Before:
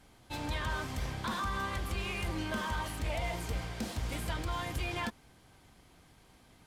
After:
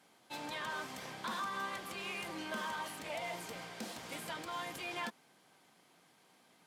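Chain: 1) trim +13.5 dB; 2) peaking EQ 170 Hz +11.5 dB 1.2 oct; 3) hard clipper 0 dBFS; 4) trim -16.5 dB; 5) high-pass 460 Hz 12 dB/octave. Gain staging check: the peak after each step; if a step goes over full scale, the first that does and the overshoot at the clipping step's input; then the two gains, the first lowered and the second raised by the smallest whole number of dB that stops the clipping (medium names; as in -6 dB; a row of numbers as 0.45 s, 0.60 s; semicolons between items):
-13.0 dBFS, -5.5 dBFS, -5.5 dBFS, -22.0 dBFS, -28.0 dBFS; nothing clips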